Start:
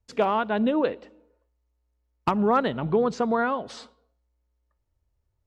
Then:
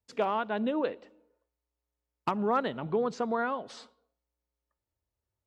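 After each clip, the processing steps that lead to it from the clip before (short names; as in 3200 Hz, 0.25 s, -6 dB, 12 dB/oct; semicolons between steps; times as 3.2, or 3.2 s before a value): HPF 180 Hz 6 dB/oct; gain -5.5 dB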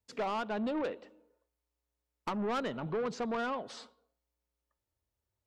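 soft clip -29.5 dBFS, distortion -10 dB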